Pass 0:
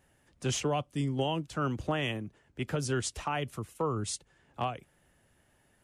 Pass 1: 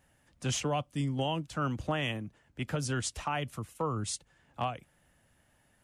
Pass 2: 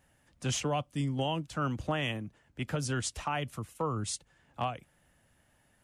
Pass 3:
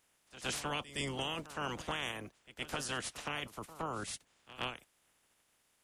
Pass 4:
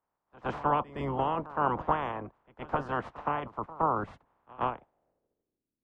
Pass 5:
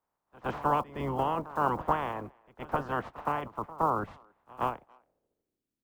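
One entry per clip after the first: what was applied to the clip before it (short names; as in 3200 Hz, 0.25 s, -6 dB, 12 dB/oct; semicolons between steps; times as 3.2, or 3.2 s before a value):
bell 390 Hz -7 dB 0.41 oct
nothing audible
spectral limiter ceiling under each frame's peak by 24 dB; pre-echo 0.116 s -15.5 dB; gain -6 dB
low-pass sweep 1000 Hz -> 280 Hz, 4.69–5.74; three-band expander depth 40%; gain +7 dB
block floating point 7-bit; speakerphone echo 0.28 s, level -28 dB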